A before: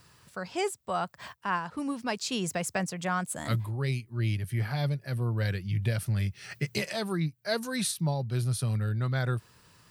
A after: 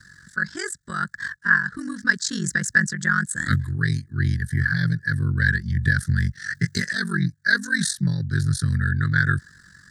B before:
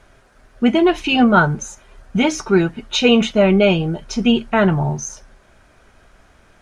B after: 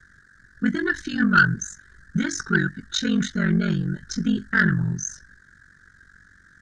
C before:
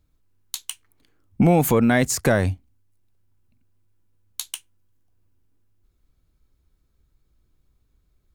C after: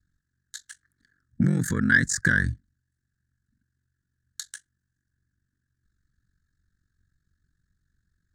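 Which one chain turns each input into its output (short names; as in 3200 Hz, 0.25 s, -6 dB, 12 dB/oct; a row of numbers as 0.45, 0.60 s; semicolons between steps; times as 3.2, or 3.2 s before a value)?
HPF 70 Hz 6 dB/oct; high shelf 8000 Hz -5 dB; ring modulator 23 Hz; EQ curve 180 Hz 0 dB, 350 Hz -10 dB, 750 Hz -30 dB, 1100 Hz -14 dB, 1700 Hz +13 dB, 2500 Hz -26 dB, 3800 Hz -4 dB, 7800 Hz +1 dB, 13000 Hz -15 dB; harmonic-percussive split harmonic -3 dB; in parallel at -7 dB: sine folder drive 6 dB, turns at -4.5 dBFS; on the sum: match loudness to -23 LUFS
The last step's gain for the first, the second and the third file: +6.5, -4.5, -4.5 dB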